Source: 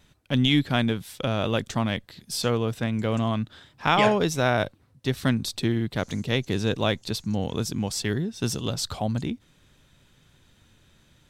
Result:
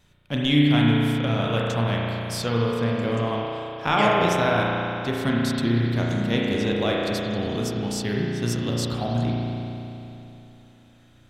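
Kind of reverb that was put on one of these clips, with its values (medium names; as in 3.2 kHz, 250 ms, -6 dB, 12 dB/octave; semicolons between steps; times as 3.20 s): spring tank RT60 3.1 s, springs 34 ms, chirp 65 ms, DRR -3.5 dB; trim -2.5 dB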